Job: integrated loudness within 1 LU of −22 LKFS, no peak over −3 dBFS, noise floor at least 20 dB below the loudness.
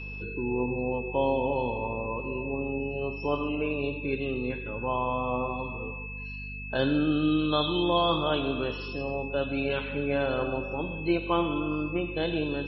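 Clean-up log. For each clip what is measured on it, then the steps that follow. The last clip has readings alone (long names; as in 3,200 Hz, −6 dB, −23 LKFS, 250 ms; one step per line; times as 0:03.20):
mains hum 50 Hz; hum harmonics up to 250 Hz; level of the hum −38 dBFS; interfering tone 2,600 Hz; level of the tone −39 dBFS; integrated loudness −29.0 LKFS; sample peak −12.0 dBFS; target loudness −22.0 LKFS
→ hum removal 50 Hz, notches 5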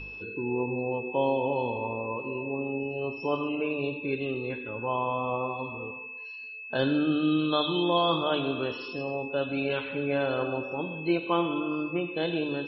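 mains hum none found; interfering tone 2,600 Hz; level of the tone −39 dBFS
→ notch filter 2,600 Hz, Q 30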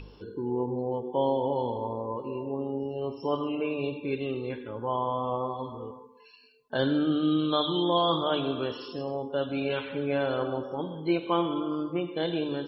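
interfering tone none found; integrated loudness −29.5 LKFS; sample peak −12.0 dBFS; target loudness −22.0 LKFS
→ level +7.5 dB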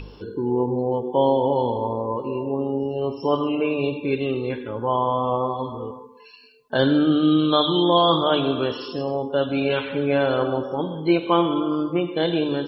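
integrated loudness −22.0 LKFS; sample peak −4.5 dBFS; background noise floor −46 dBFS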